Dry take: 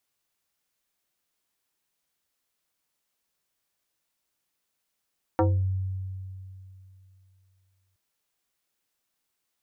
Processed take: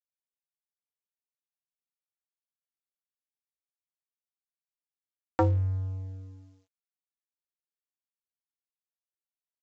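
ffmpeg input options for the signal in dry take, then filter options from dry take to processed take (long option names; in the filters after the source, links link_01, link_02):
-f lavfi -i "aevalsrc='0.133*pow(10,-3*t/2.86)*sin(2*PI*94.6*t+2.6*pow(10,-3*t/0.33)*sin(2*PI*4.45*94.6*t))':duration=2.57:sample_rate=44100"
-af "highshelf=frequency=2000:gain=9,aresample=16000,aeval=exprs='sgn(val(0))*max(abs(val(0))-0.00596,0)':channel_layout=same,aresample=44100"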